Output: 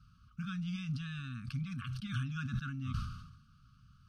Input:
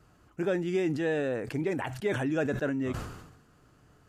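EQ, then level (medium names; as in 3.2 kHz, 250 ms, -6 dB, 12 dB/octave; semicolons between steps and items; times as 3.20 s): Savitzky-Golay filter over 15 samples; brick-wall FIR band-stop 270–1100 Hz; static phaser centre 790 Hz, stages 4; +2.5 dB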